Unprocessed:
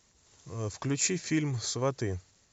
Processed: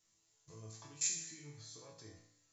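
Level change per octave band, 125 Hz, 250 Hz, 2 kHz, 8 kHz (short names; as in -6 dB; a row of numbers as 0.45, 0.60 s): -21.5 dB, -26.0 dB, -15.5 dB, n/a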